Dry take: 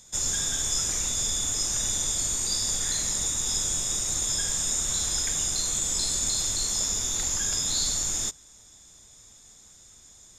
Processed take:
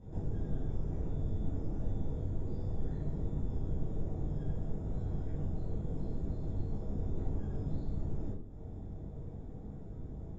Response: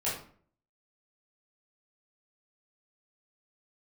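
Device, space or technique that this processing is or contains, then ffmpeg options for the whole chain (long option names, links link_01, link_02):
television next door: -filter_complex "[0:a]acompressor=threshold=-43dB:ratio=5,lowpass=330[link_01];[1:a]atrim=start_sample=2205[link_02];[link_01][link_02]afir=irnorm=-1:irlink=0,equalizer=frequency=340:width_type=o:width=0.54:gain=3.5,volume=13.5dB"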